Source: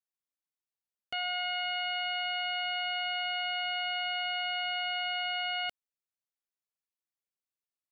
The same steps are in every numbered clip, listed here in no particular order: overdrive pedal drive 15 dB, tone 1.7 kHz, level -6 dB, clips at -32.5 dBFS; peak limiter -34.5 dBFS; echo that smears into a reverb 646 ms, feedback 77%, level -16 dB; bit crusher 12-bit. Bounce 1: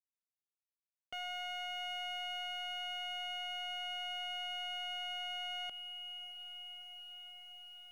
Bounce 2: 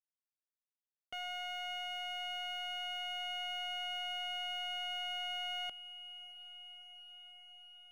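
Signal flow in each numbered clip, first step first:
overdrive pedal > echo that smears into a reverb > bit crusher > peak limiter; overdrive pedal > peak limiter > bit crusher > echo that smears into a reverb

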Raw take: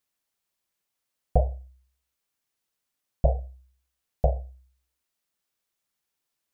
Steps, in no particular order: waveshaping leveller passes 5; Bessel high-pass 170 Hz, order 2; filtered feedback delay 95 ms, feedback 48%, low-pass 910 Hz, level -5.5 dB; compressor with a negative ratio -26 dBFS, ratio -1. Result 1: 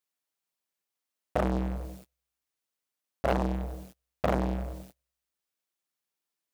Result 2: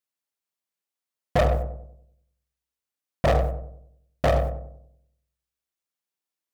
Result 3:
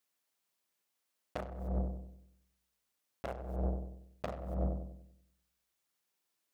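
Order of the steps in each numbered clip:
compressor with a negative ratio > filtered feedback delay > waveshaping leveller > Bessel high-pass; Bessel high-pass > compressor with a negative ratio > waveshaping leveller > filtered feedback delay; waveshaping leveller > filtered feedback delay > compressor with a negative ratio > Bessel high-pass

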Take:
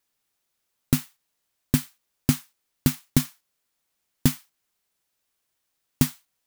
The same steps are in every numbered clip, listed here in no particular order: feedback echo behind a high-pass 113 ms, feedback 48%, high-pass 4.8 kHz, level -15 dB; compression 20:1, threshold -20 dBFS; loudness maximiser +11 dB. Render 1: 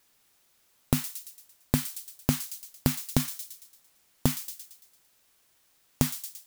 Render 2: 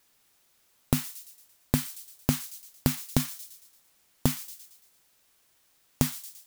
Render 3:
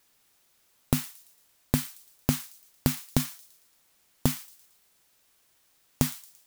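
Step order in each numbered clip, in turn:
feedback echo behind a high-pass > loudness maximiser > compression; loudness maximiser > feedback echo behind a high-pass > compression; loudness maximiser > compression > feedback echo behind a high-pass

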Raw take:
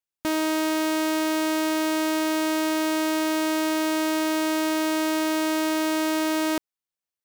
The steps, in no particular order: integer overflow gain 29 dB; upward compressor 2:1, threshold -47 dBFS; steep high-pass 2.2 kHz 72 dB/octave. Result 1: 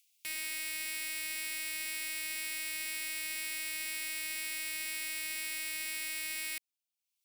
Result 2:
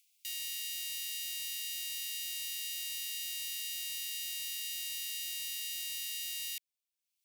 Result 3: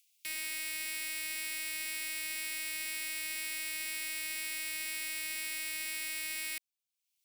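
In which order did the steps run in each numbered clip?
upward compressor > steep high-pass > integer overflow; upward compressor > integer overflow > steep high-pass; steep high-pass > upward compressor > integer overflow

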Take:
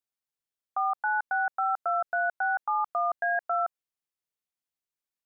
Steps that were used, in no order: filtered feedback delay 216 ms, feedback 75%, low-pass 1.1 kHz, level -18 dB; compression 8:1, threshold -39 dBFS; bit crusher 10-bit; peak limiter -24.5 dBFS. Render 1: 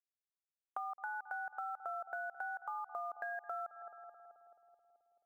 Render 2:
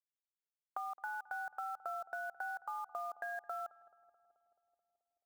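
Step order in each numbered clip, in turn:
bit crusher > filtered feedback delay > peak limiter > compression; peak limiter > compression > bit crusher > filtered feedback delay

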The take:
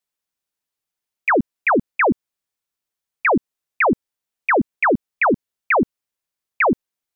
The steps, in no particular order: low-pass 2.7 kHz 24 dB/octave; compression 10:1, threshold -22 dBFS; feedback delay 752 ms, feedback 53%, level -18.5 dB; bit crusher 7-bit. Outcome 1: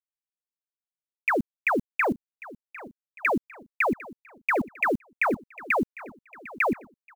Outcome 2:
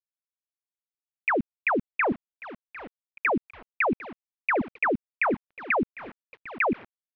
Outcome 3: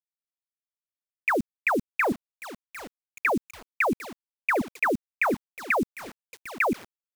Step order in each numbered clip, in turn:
low-pass > bit crusher > compression > feedback delay; compression > feedback delay > bit crusher > low-pass; low-pass > compression > feedback delay > bit crusher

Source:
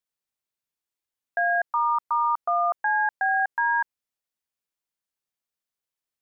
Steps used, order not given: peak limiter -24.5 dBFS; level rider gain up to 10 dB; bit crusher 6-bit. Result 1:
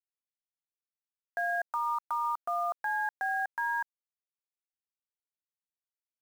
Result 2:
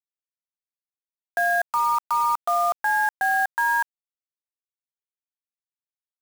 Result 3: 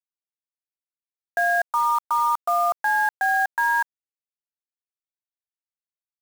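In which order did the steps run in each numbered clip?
level rider > bit crusher > peak limiter; bit crusher > peak limiter > level rider; peak limiter > level rider > bit crusher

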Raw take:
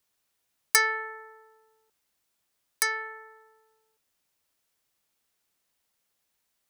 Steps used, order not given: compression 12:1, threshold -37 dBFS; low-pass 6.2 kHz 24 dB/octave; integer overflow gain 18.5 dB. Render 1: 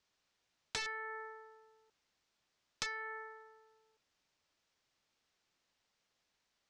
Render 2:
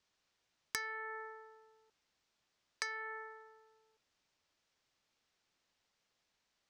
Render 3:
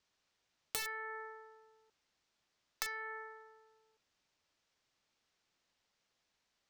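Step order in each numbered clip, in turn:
integer overflow > low-pass > compression; low-pass > compression > integer overflow; low-pass > integer overflow > compression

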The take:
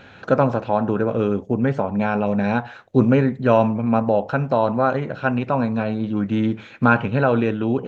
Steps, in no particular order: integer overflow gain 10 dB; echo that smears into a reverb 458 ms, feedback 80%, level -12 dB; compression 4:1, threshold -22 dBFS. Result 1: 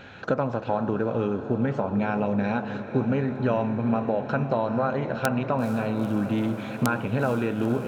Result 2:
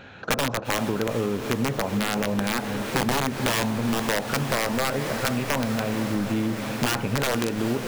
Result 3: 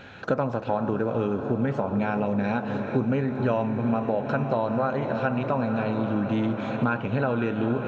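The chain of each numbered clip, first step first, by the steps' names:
compression > integer overflow > echo that smears into a reverb; integer overflow > echo that smears into a reverb > compression; echo that smears into a reverb > compression > integer overflow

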